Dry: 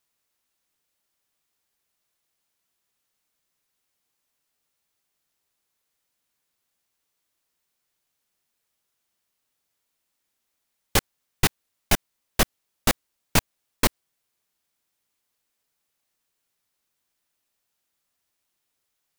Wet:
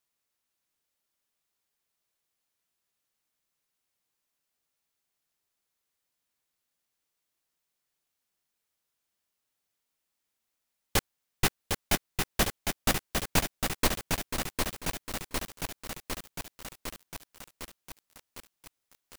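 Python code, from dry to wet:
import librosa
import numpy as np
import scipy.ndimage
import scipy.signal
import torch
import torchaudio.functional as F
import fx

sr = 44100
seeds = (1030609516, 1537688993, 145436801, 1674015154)

y = fx.echo_feedback(x, sr, ms=492, feedback_pct=29, wet_db=-9)
y = fx.echo_crushed(y, sr, ms=755, feedback_pct=80, bits=6, wet_db=-4)
y = y * librosa.db_to_amplitude(-5.5)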